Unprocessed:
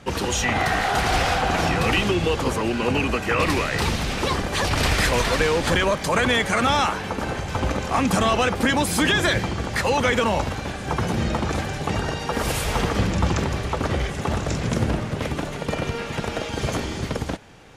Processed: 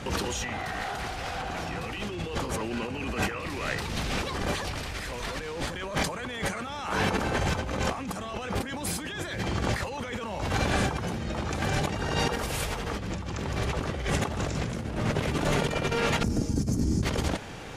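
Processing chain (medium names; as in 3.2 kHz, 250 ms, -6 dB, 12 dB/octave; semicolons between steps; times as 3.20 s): 16.23–17.03 s: FFT filter 280 Hz 0 dB, 530 Hz -18 dB, 3.4 kHz -28 dB, 5.3 kHz -7 dB; compressor with a negative ratio -31 dBFS, ratio -1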